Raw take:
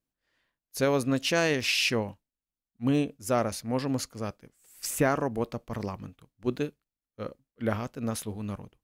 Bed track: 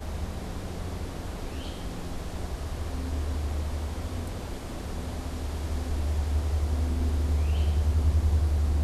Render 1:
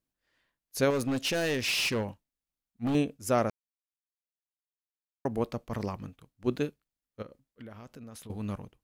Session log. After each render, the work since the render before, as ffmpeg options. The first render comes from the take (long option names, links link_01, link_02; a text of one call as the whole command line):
ffmpeg -i in.wav -filter_complex "[0:a]asettb=1/sr,asplit=3[link_01][link_02][link_03];[link_01]atrim=end=0.904[link_04];[link_02]atrim=start=0.9:end=2.95,asetpts=PTS-STARTPTS,afade=type=in:duration=0.004:curve=qsin,afade=type=out:start_time=2.046:duration=0.004:curve=qsin,asoftclip=type=hard:threshold=-25.5dB[link_05];[link_03]atrim=start=2.946[link_06];[link_04][link_05]acrossfade=duration=0.004:curve1=hsin:curve2=qsin[link_07];[link_07][link_06]acrossfade=duration=0.004:curve1=qsin:curve2=hsin,asettb=1/sr,asplit=3[link_08][link_09][link_10];[link_08]atrim=end=7.224[link_11];[link_09]atrim=start=7.22:end=8.3,asetpts=PTS-STARTPTS,afade=type=in:duration=0.004:curve=qsin,afade=type=out:start_time=1.076:duration=0.004:curve=qsin,acompressor=threshold=-43dB:ratio=8:attack=3.2:release=140:knee=1:detection=peak[link_12];[link_10]atrim=start=8.296[link_13];[link_11][link_12]acrossfade=duration=0.004:curve1=hsin:curve2=qsin[link_14];[link_14][link_13]acrossfade=duration=0.004:curve1=qsin:curve2=hsin,asplit=3[link_15][link_16][link_17];[link_15]atrim=end=3.5,asetpts=PTS-STARTPTS,afade=type=out:start_time=3.496:duration=0.004:curve=hsin[link_18];[link_16]atrim=start=3.5:end=5.25,asetpts=PTS-STARTPTS,volume=0[link_19];[link_17]atrim=start=5.25,asetpts=PTS-STARTPTS,afade=type=in:duration=0.004:curve=hsin[link_20];[link_18][link_19][link_20]concat=n=3:v=0:a=1" out.wav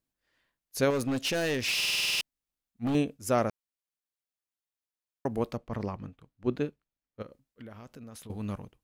ffmpeg -i in.wav -filter_complex "[0:a]asettb=1/sr,asplit=3[link_01][link_02][link_03];[link_01]atrim=end=5.574[link_04];[link_02]atrim=start=5.57:end=7.21,asetpts=PTS-STARTPTS,afade=type=in:duration=0.004:curve=qsin,afade=type=out:start_time=1.636:duration=0.004:curve=qsin,lowpass=frequency=2400:poles=1[link_05];[link_03]atrim=start=7.206[link_06];[link_04][link_05]acrossfade=duration=0.004:curve1=hsin:curve2=qsin[link_07];[link_07][link_06]acrossfade=duration=0.004:curve1=qsin:curve2=hsin,asplit=10[link_08][link_09][link_10][link_11][link_12][link_13][link_14][link_15][link_16][link_17];[link_08]atrim=end=1.812[link_18];[link_09]atrim=start=1.758:end=1.812[link_19];[link_10]atrim=start=1.758:end=1.812[link_20];[link_11]atrim=start=1.758:end=1.812[link_21];[link_12]atrim=start=1.758:end=1.812[link_22];[link_13]atrim=start=1.758:end=1.812[link_23];[link_14]atrim=start=1.758:end=1.812[link_24];[link_15]atrim=start=1.758:end=1.812[link_25];[link_16]atrim=start=1.758:end=1.812[link_26];[link_17]atrim=start=2.208[link_27];[link_18][link_19]acrossfade=duration=0.004:curve1=hsin:curve2=hsin[link_28];[link_28][link_20]acrossfade=duration=0.004:curve1=hsin:curve2=hsin[link_29];[link_29][link_21]acrossfade=duration=0.004:curve1=hsin:curve2=hsin[link_30];[link_30][link_22]acrossfade=duration=0.004:curve1=hsin:curve2=hsin[link_31];[link_31][link_23]acrossfade=duration=0.004:curve1=hsin:curve2=hsin[link_32];[link_32][link_24]acrossfade=duration=0.004:curve1=hsin:curve2=hsin[link_33];[link_33][link_25]acrossfade=duration=0.004:curve1=hsin:curve2=hsin[link_34];[link_34][link_26]acrossfade=duration=0.004:curve1=hsin:curve2=hsin[link_35];[link_35][link_27]acrossfade=duration=0.004:curve1=hsin:curve2=hsin" out.wav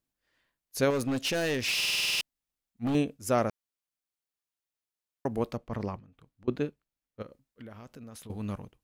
ffmpeg -i in.wav -filter_complex "[0:a]asettb=1/sr,asplit=3[link_01][link_02][link_03];[link_01]atrim=end=5.994[link_04];[link_02]atrim=start=5.99:end=6.48,asetpts=PTS-STARTPTS,afade=type=in:duration=0.004:curve=qsin,afade=type=out:start_time=0.486:duration=0.004:curve=qsin,acompressor=threshold=-52dB:ratio=6:attack=3.2:release=140:knee=1:detection=peak[link_05];[link_03]atrim=start=6.476[link_06];[link_04][link_05]acrossfade=duration=0.004:curve1=hsin:curve2=qsin[link_07];[link_07][link_06]acrossfade=duration=0.004:curve1=qsin:curve2=hsin" out.wav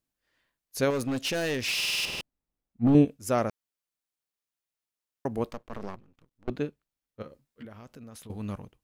ffmpeg -i in.wav -filter_complex "[0:a]asettb=1/sr,asplit=3[link_01][link_02][link_03];[link_01]atrim=end=2.054[link_04];[link_02]atrim=start=2.05:end=3.05,asetpts=PTS-STARTPTS,afade=type=in:duration=0.004:curve=qsin,afade=type=out:start_time=0.996:duration=0.004:curve=qsin,tiltshelf=frequency=1200:gain=9[link_05];[link_03]atrim=start=3.046[link_06];[link_04][link_05]acrossfade=duration=0.004:curve1=hsin:curve2=qsin[link_07];[link_07][link_06]acrossfade=duration=0.004:curve1=qsin:curve2=hsin,asplit=3[link_08][link_09][link_10];[link_08]afade=type=out:start_time=5.49:duration=0.02[link_11];[link_09]aeval=exprs='max(val(0),0)':channel_layout=same,afade=type=in:start_time=5.49:duration=0.02,afade=type=out:start_time=6.49:duration=0.02[link_12];[link_10]afade=type=in:start_time=6.49:duration=0.02[link_13];[link_11][link_12][link_13]amix=inputs=3:normalize=0,asettb=1/sr,asplit=3[link_14][link_15][link_16];[link_14]atrim=end=7.224[link_17];[link_15]atrim=start=7.22:end=7.65,asetpts=PTS-STARTPTS,afade=type=in:duration=0.004:curve=qsin,afade=type=out:start_time=0.426:duration=0.004:curve=qsin,asplit=2[link_18][link_19];[link_19]adelay=13,volume=-2dB[link_20];[link_18][link_20]amix=inputs=2:normalize=0,atrim=end_sample=18963[link_21];[link_16]atrim=start=7.646[link_22];[link_17][link_21]acrossfade=duration=0.004:curve1=hsin:curve2=qsin[link_23];[link_23][link_22]acrossfade=duration=0.004:curve1=qsin:curve2=hsin" out.wav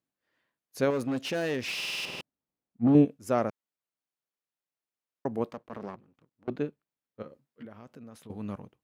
ffmpeg -i in.wav -af "highpass=130,highshelf=frequency=2900:gain=-9.5" out.wav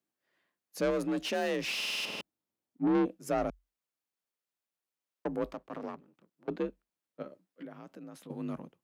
ffmpeg -i in.wav -af "asoftclip=type=tanh:threshold=-23.5dB,afreqshift=45" out.wav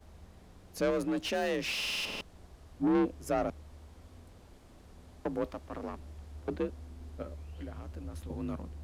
ffmpeg -i in.wav -i bed.wav -filter_complex "[1:a]volume=-20dB[link_01];[0:a][link_01]amix=inputs=2:normalize=0" out.wav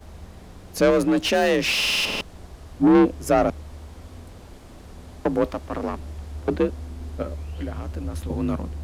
ffmpeg -i in.wav -af "volume=12dB" out.wav